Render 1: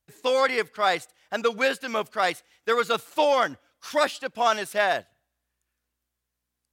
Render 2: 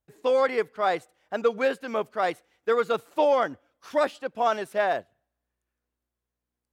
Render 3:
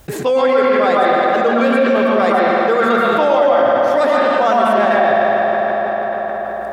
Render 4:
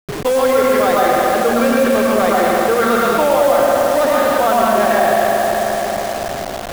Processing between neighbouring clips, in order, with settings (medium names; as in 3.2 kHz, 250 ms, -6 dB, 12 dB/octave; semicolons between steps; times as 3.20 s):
FFT filter 130 Hz 0 dB, 440 Hz +4 dB, 4.8 kHz -9 dB; trim -2 dB
reverberation RT60 2.5 s, pre-delay 108 ms, DRR -6.5 dB; level flattener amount 70%; trim +1 dB
send-on-delta sampling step -19.5 dBFS